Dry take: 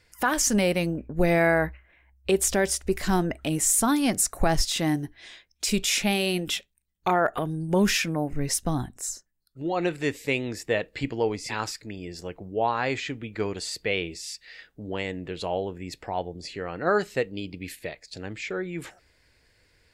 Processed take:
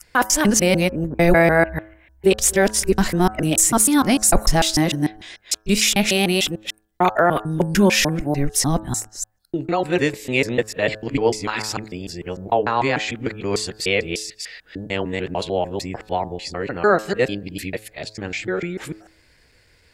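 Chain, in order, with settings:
reversed piece by piece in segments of 149 ms
hum removal 107.4 Hz, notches 16
level +7 dB

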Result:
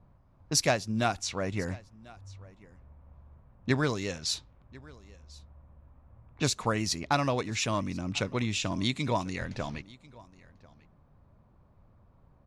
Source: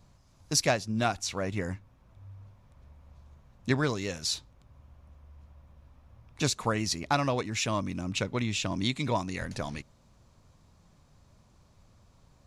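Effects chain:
low-pass that shuts in the quiet parts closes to 1,300 Hz, open at −26 dBFS
single-tap delay 1,043 ms −23 dB

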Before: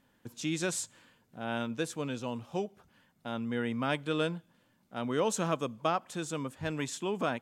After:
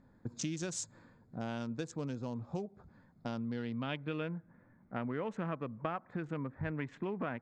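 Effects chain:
adaptive Wiener filter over 15 samples
low-shelf EQ 240 Hz +9.5 dB
downward compressor 6 to 1, threshold −37 dBFS, peak gain reduction 14 dB
low-pass filter sweep 6,300 Hz → 2,000 Hz, 0:03.11–0:04.38
level +1.5 dB

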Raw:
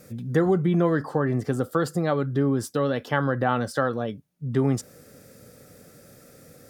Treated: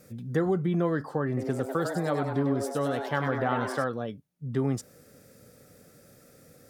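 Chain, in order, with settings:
0:01.27–0:03.84: echo with shifted repeats 99 ms, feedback 52%, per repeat +140 Hz, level −6 dB
level −5 dB

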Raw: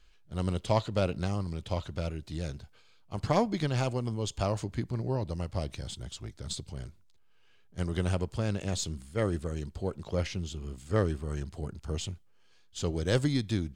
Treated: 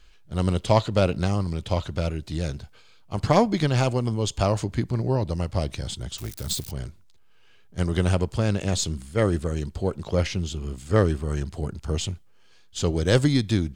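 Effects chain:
0:06.18–0:06.71: spike at every zero crossing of −35.5 dBFS
level +7.5 dB

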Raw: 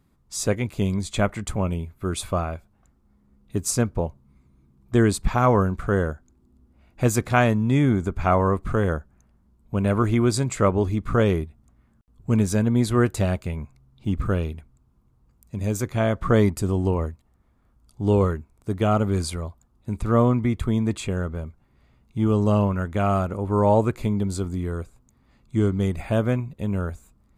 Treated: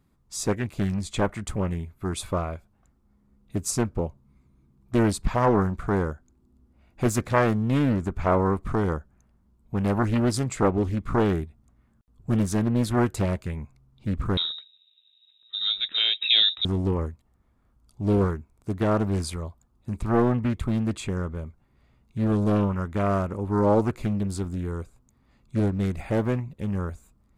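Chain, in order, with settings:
0:14.37–0:16.65: voice inversion scrambler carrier 3,800 Hz
highs frequency-modulated by the lows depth 0.77 ms
level −2.5 dB

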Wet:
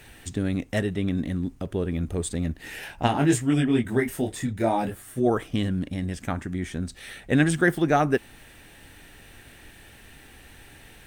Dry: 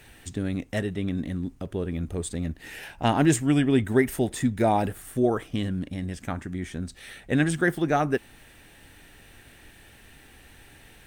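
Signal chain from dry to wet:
0:03.06–0:05.25: micro pitch shift up and down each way 29 cents → 13 cents
level +2.5 dB

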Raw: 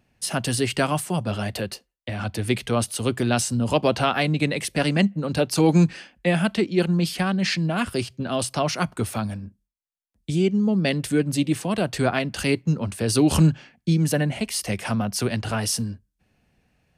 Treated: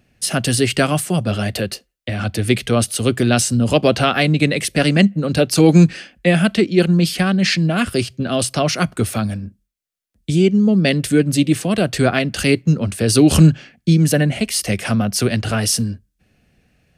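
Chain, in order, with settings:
parametric band 930 Hz −9.5 dB 0.46 octaves
level +7 dB

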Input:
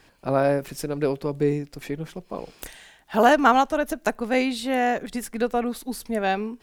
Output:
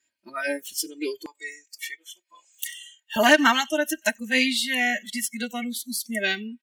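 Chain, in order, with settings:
comb filter 3.2 ms, depth 98%
feedback echo with a band-pass in the loop 92 ms, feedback 54%, band-pass 2,300 Hz, level −19.5 dB
noise reduction from a noise print of the clip's start 27 dB
high-pass filter 93 Hz 24 dB per octave, from 0:01.26 730 Hz, from 0:03.16 86 Hz
high shelf with overshoot 1,500 Hz +9 dB, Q 1.5
level −4 dB

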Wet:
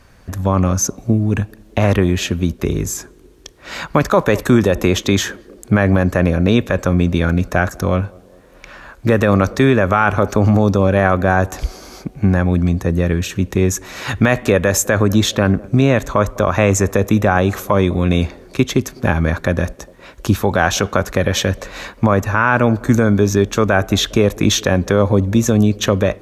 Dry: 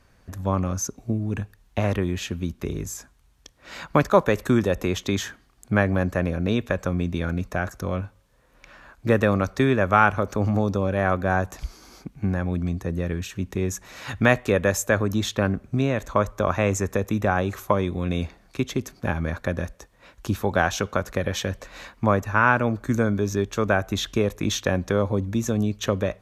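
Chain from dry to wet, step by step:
on a send: feedback echo with a band-pass in the loop 203 ms, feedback 70%, band-pass 400 Hz, level −23.5 dB
on the sum: boost into a limiter +11.5 dB
level −1 dB

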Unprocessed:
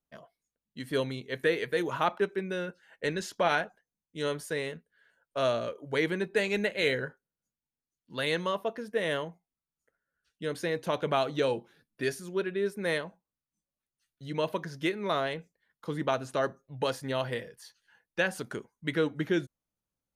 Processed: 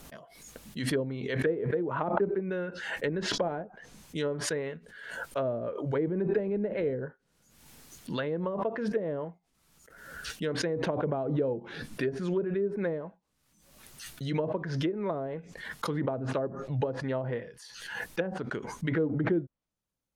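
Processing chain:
treble cut that deepens with the level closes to 510 Hz, closed at −25.5 dBFS
background raised ahead of every attack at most 48 dB per second
level +1 dB

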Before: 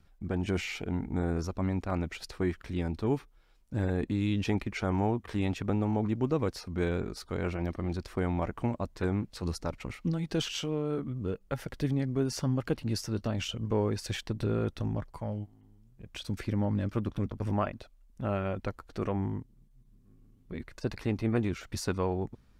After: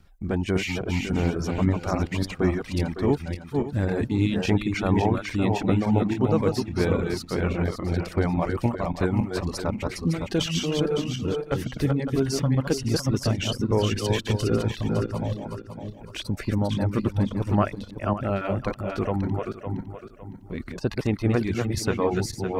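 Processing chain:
feedback delay that plays each chunk backwards 279 ms, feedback 57%, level −3 dB
reverb reduction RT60 0.8 s
level +6.5 dB

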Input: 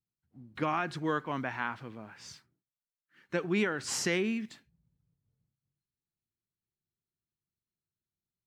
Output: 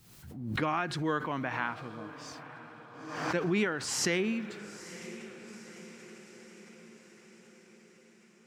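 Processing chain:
on a send: feedback delay with all-pass diffusion 939 ms, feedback 58%, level −14 dB
on the sum: background raised ahead of every attack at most 53 dB per second

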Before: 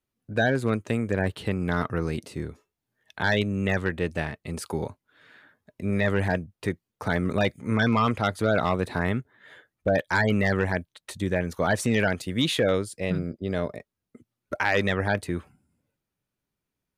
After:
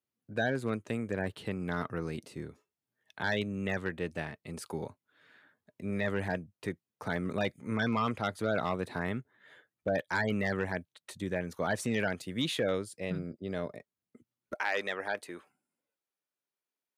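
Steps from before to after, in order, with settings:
high-pass filter 110 Hz 12 dB per octave, from 0:14.54 430 Hz
level −7.5 dB

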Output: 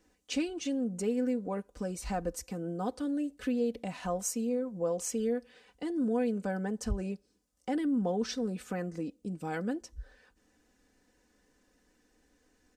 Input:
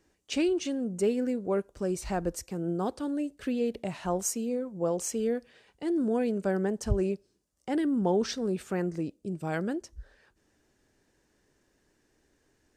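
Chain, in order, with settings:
in parallel at +3 dB: downward compressor, threshold −36 dBFS, peak gain reduction 15.5 dB
on the sum: comb filter 4 ms, depth 66%
level −8.5 dB

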